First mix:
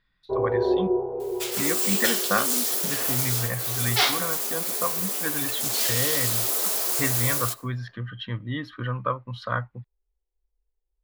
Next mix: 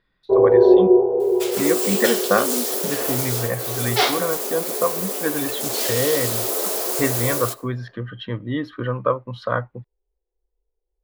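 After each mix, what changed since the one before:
master: add parametric band 440 Hz +11.5 dB 1.8 octaves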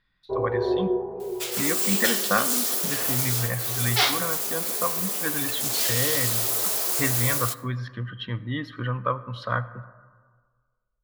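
speech: send on
first sound: send −11.0 dB
master: add parametric band 440 Hz −11.5 dB 1.8 octaves

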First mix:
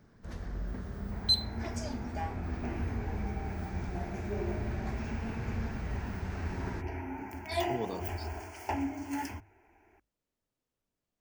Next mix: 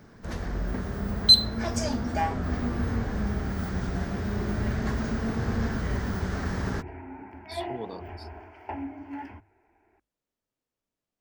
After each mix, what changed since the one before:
first sound +11.0 dB
second sound: add high-frequency loss of the air 430 metres
master: add low-shelf EQ 150 Hz −5.5 dB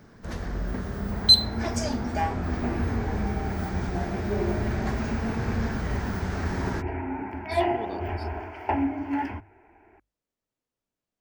second sound +10.0 dB

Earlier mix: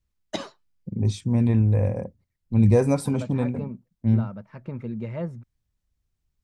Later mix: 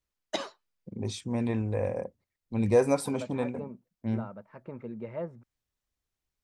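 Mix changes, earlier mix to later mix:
second voice: add low-pass filter 1,200 Hz 6 dB per octave
master: add bass and treble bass −14 dB, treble −1 dB

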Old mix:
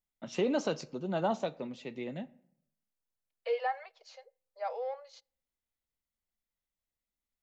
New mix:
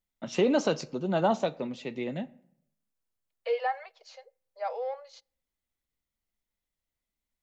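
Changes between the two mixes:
first voice +5.5 dB
second voice +3.0 dB

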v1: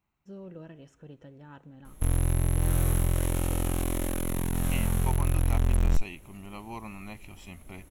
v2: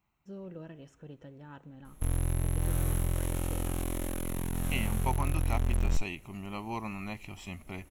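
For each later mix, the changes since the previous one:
second voice +3.5 dB
background −4.5 dB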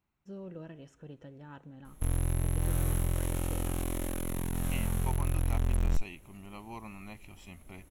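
second voice −7.5 dB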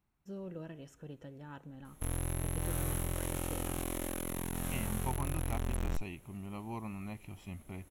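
first voice: remove high-frequency loss of the air 52 metres
second voice: add spectral tilt −2 dB per octave
background: add low-shelf EQ 170 Hz −8.5 dB

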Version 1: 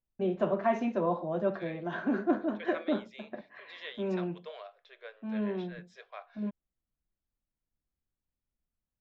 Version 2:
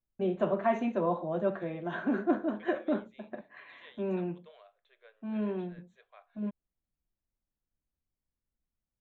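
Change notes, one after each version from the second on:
second voice −11.0 dB
master: add Butterworth band-reject 5,100 Hz, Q 2.7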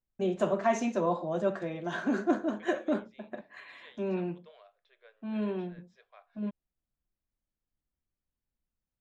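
first voice: remove high-frequency loss of the air 270 metres
master: remove Butterworth band-reject 5,100 Hz, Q 2.7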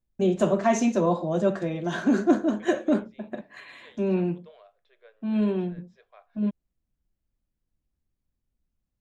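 first voice: add high-shelf EQ 3,300 Hz +11.5 dB
master: add low-shelf EQ 490 Hz +10.5 dB

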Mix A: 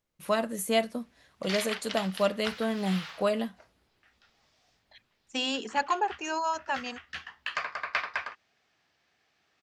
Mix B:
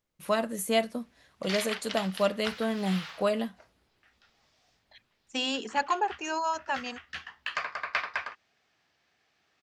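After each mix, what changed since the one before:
nothing changed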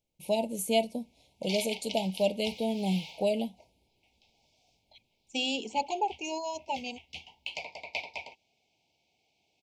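master: add Chebyshev band-stop filter 930–2,200 Hz, order 5

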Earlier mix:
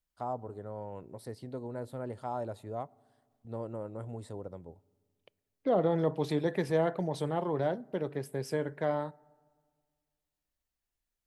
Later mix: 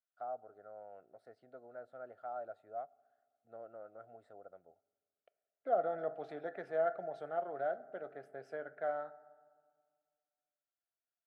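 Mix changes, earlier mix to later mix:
second voice: send +11.5 dB
master: add pair of resonant band-passes 980 Hz, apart 1 octave

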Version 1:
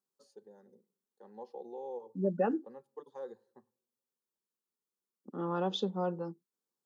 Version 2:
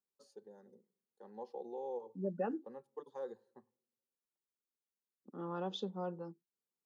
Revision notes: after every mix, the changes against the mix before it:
second voice −7.0 dB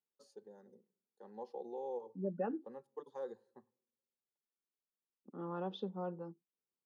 second voice: add high-frequency loss of the air 250 metres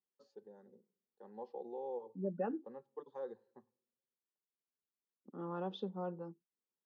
first voice: add high-frequency loss of the air 180 metres

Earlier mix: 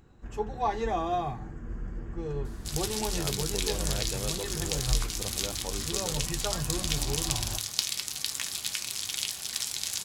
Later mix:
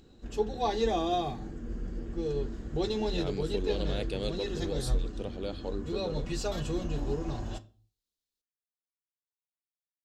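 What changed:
second sound: muted
master: add octave-band graphic EQ 125/250/500/1,000/2,000/4,000 Hz −5/+5/+4/−6/−4/+11 dB

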